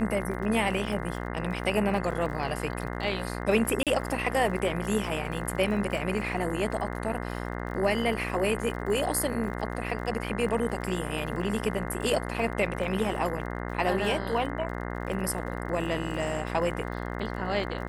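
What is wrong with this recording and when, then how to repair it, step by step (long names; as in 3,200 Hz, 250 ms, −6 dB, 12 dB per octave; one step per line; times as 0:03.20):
mains buzz 60 Hz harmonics 35 −34 dBFS
surface crackle 41 per second −37 dBFS
0:03.83–0:03.87: drop-out 37 ms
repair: click removal
hum removal 60 Hz, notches 35
repair the gap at 0:03.83, 37 ms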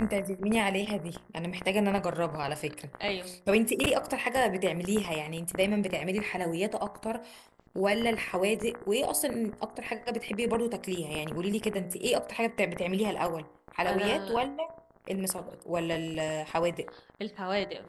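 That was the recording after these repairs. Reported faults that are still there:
none of them is left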